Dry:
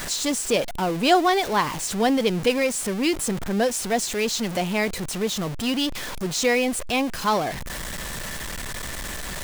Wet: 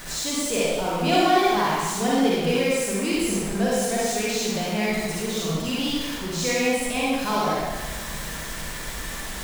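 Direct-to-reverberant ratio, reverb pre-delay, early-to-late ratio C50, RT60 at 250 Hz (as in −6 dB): −7.0 dB, 40 ms, −5.0 dB, 1.4 s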